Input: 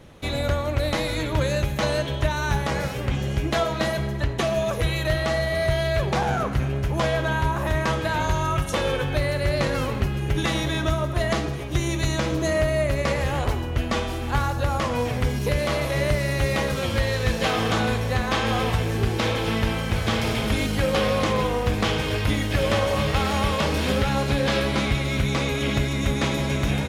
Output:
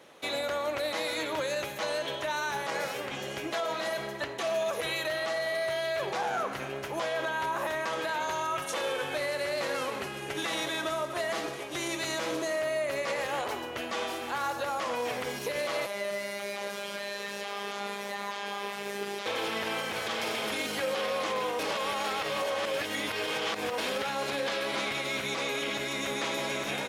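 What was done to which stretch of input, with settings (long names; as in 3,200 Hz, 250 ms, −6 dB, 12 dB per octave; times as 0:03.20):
0:08.68–0:12.62: variable-slope delta modulation 64 kbit/s
0:15.86–0:19.26: phases set to zero 201 Hz
0:21.59–0:23.78: reverse
whole clip: high-pass filter 430 Hz 12 dB per octave; brickwall limiter −21 dBFS; level −1.5 dB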